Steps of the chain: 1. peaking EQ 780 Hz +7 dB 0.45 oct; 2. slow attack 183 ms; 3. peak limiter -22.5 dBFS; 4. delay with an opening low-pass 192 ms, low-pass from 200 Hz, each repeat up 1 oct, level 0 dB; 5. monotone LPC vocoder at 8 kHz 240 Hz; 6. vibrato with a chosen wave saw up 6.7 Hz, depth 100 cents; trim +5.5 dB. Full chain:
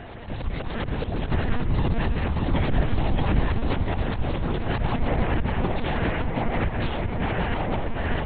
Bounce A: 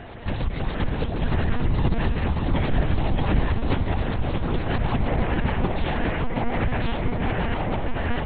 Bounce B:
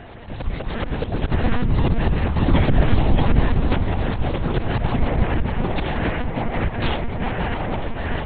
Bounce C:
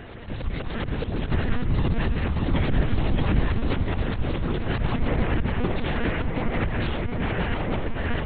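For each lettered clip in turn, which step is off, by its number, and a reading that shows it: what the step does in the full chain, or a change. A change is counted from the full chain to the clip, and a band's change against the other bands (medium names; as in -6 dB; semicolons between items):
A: 2, momentary loudness spread change -1 LU; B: 3, mean gain reduction 2.5 dB; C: 1, 1 kHz band -3.5 dB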